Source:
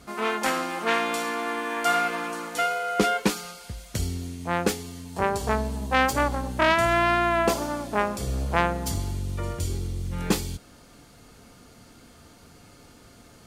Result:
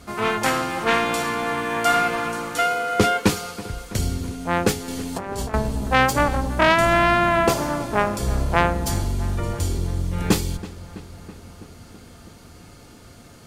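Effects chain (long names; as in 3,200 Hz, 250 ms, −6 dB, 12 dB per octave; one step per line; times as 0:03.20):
sub-octave generator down 1 octave, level −4 dB
0:04.88–0:05.54: compressor whose output falls as the input rises −33 dBFS, ratio −1
feedback echo with a low-pass in the loop 328 ms, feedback 72%, low-pass 3,500 Hz, level −16.5 dB
level +4 dB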